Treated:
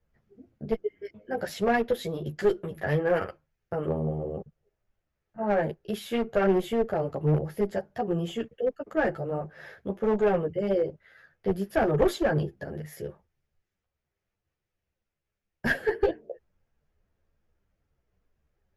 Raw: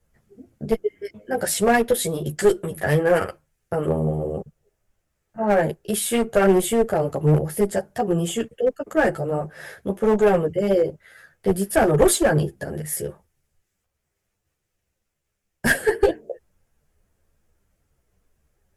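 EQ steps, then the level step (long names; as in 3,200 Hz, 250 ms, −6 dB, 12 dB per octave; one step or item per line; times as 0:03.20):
moving average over 5 samples
−6.5 dB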